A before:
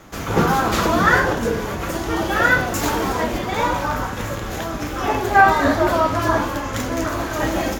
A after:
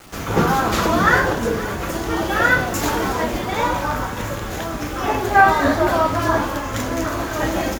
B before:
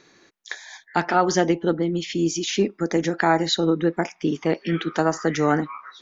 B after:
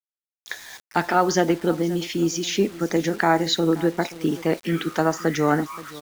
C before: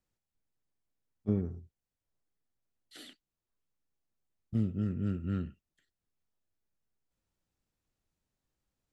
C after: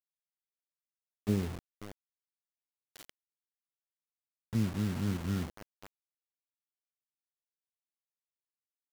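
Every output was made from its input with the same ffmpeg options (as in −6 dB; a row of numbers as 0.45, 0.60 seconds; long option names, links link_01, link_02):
-af "aecho=1:1:527|1054:0.119|0.0285,acrusher=bits=6:mix=0:aa=0.000001"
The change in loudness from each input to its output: 0.0, 0.0, +0.5 LU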